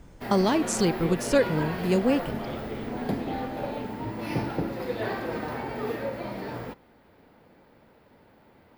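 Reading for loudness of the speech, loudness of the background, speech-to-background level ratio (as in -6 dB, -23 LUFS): -25.5 LUFS, -32.5 LUFS, 7.0 dB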